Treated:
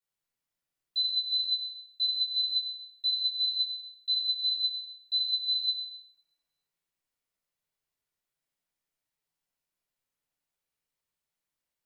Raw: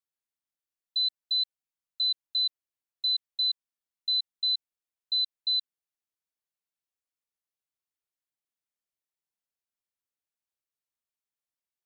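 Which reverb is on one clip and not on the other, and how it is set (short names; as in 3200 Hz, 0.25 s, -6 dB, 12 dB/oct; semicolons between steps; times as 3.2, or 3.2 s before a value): shoebox room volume 760 m³, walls mixed, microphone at 4.7 m; gain -4 dB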